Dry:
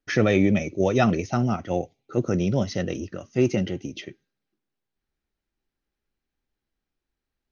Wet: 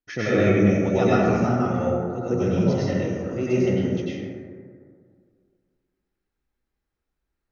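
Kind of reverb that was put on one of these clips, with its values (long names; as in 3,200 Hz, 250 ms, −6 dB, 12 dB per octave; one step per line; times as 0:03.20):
dense smooth reverb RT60 2.1 s, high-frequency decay 0.3×, pre-delay 85 ms, DRR −10 dB
level −8.5 dB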